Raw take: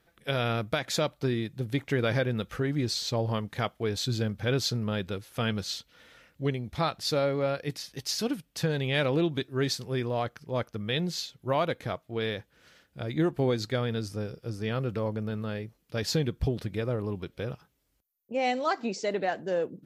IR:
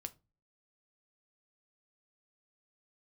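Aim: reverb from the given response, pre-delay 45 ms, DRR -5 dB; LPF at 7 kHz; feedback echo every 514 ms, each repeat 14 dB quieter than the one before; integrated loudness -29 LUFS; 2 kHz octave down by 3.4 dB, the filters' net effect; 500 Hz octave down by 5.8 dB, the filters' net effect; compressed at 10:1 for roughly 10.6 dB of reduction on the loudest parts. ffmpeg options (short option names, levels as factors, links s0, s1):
-filter_complex "[0:a]lowpass=7000,equalizer=f=500:t=o:g=-7,equalizer=f=2000:t=o:g=-4,acompressor=threshold=0.0158:ratio=10,aecho=1:1:514|1028:0.2|0.0399,asplit=2[s0][s1];[1:a]atrim=start_sample=2205,adelay=45[s2];[s1][s2]afir=irnorm=-1:irlink=0,volume=2.82[s3];[s0][s3]amix=inputs=2:normalize=0,volume=1.88"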